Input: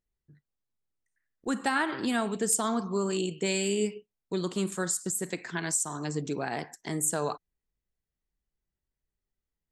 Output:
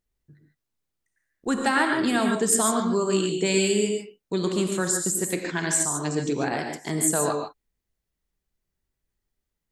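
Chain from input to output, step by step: non-linear reverb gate 0.17 s rising, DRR 3.5 dB; gain +4.5 dB

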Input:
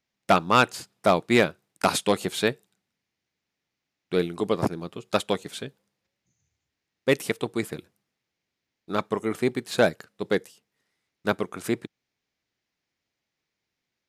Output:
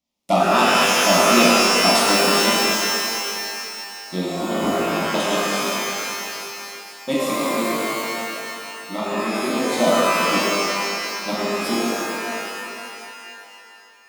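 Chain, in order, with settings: fixed phaser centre 430 Hz, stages 6; shimmer reverb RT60 2.7 s, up +12 st, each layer -2 dB, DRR -7.5 dB; gain -1 dB

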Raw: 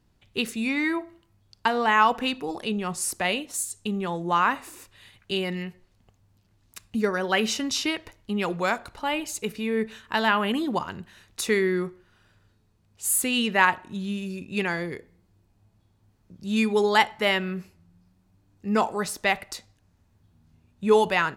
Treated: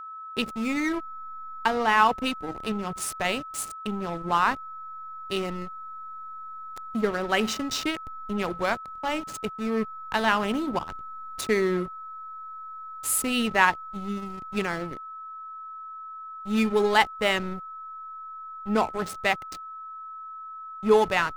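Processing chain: backlash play -25 dBFS; whine 1300 Hz -37 dBFS

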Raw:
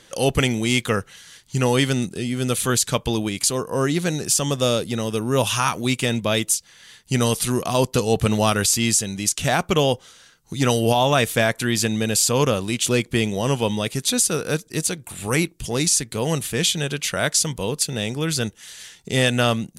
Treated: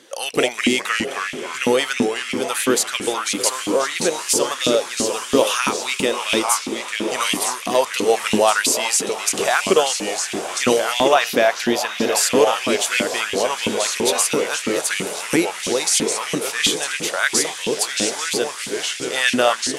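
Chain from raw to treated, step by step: echoes that change speed 0.156 s, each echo -2 st, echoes 3, each echo -6 dB; diffused feedback echo 0.847 s, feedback 61%, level -11.5 dB; LFO high-pass saw up 3 Hz 230–2700 Hz; 11.14–12.17 bell 8400 Hz -8.5 dB 0.67 oct

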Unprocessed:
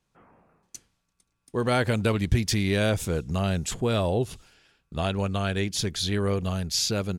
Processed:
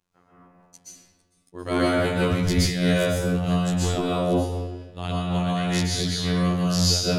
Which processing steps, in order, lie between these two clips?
robotiser 88.9 Hz; reverb RT60 1.3 s, pre-delay 0.115 s, DRR -8 dB; noise-modulated level, depth 65%

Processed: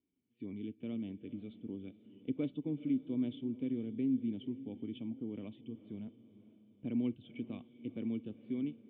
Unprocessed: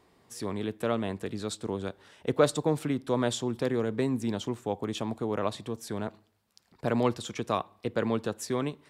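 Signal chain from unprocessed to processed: spectral noise reduction 12 dB; vocal tract filter i; diffused feedback echo 0.464 s, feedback 48%, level -16 dB; gain -1 dB

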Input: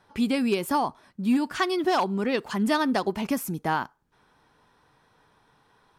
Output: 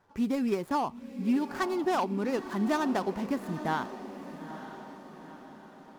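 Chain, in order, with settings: median filter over 15 samples; diffused feedback echo 0.912 s, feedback 50%, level -11.5 dB; gain -4 dB

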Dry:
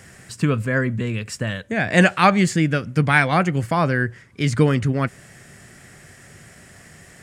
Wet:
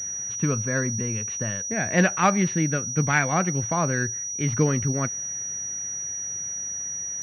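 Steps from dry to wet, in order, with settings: pulse-width modulation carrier 5800 Hz; gain -5 dB

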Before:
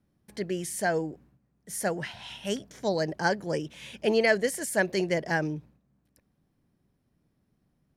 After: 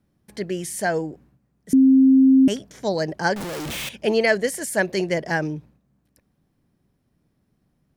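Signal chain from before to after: 1.73–2.48 bleep 265 Hz -14 dBFS; 3.36–3.89 infinite clipping; gain +4 dB

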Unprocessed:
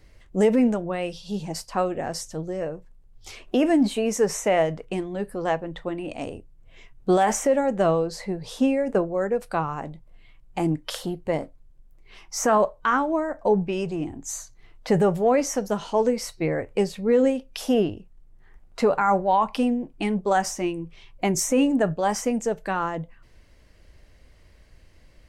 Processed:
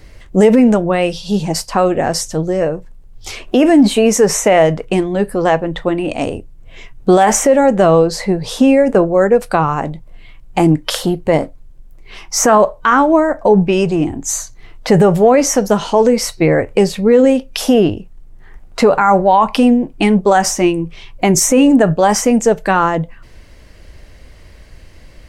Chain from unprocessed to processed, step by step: maximiser +14.5 dB; gain -1 dB

